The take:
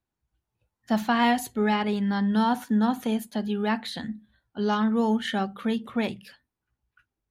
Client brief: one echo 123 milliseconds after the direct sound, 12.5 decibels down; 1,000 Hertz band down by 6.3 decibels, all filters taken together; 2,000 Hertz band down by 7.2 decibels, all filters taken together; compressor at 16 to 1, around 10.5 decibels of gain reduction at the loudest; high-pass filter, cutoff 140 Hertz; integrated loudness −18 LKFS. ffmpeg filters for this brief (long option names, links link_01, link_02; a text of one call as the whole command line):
ffmpeg -i in.wav -af "highpass=140,equalizer=frequency=1000:width_type=o:gain=-7,equalizer=frequency=2000:width_type=o:gain=-6.5,acompressor=threshold=-31dB:ratio=16,aecho=1:1:123:0.237,volume=18.5dB" out.wav